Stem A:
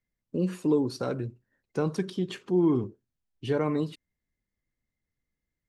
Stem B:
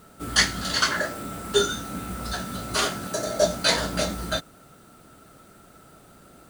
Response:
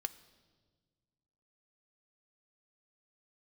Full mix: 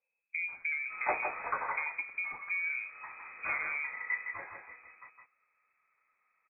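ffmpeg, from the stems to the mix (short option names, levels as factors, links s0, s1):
-filter_complex "[0:a]acompressor=threshold=0.0251:ratio=5,volume=0.841,asplit=2[s0][s1];[s1]volume=0.0668[s2];[1:a]equalizer=f=170:t=o:w=1.4:g=-9,adelay=700,volume=0.891,afade=t=out:st=1.47:d=0.61:silence=0.298538,afade=t=in:st=2.88:d=0.24:silence=0.446684,afade=t=out:st=3.97:d=0.59:silence=0.251189,asplit=2[s3][s4];[s4]volume=0.531[s5];[s2][s5]amix=inputs=2:normalize=0,aecho=0:1:161:1[s6];[s0][s3][s6]amix=inputs=3:normalize=0,lowpass=f=2200:t=q:w=0.5098,lowpass=f=2200:t=q:w=0.6013,lowpass=f=2200:t=q:w=0.9,lowpass=f=2200:t=q:w=2.563,afreqshift=-2600"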